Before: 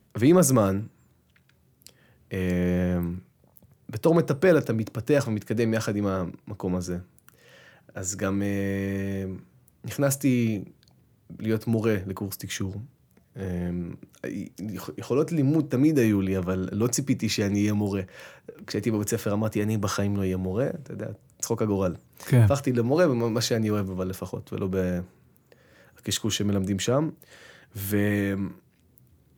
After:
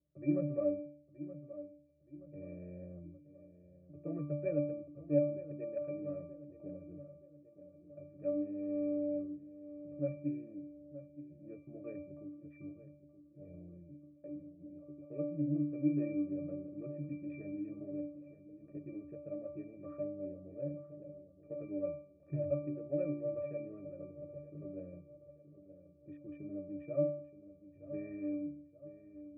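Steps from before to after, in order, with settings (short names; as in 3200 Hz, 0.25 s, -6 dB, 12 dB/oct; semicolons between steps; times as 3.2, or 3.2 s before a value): Wiener smoothing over 25 samples; vocal tract filter e; octave resonator D, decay 0.58 s; darkening echo 0.924 s, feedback 46%, level -13 dB; mismatched tape noise reduction decoder only; gain +17.5 dB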